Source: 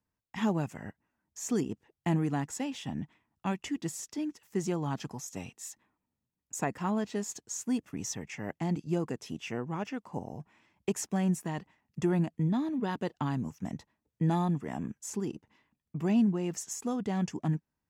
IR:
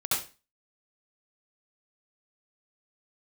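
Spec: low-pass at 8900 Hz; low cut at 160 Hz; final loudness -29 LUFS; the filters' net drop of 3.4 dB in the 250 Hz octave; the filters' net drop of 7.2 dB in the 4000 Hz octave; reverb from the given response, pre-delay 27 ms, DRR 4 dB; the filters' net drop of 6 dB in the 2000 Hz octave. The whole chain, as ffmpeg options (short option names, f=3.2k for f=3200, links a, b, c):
-filter_complex "[0:a]highpass=160,lowpass=8.9k,equalizer=f=250:t=o:g=-3,equalizer=f=2k:t=o:g=-5.5,equalizer=f=4k:t=o:g=-8.5,asplit=2[a][b];[1:a]atrim=start_sample=2205,adelay=27[c];[b][c]afir=irnorm=-1:irlink=0,volume=-13dB[d];[a][d]amix=inputs=2:normalize=0,volume=7dB"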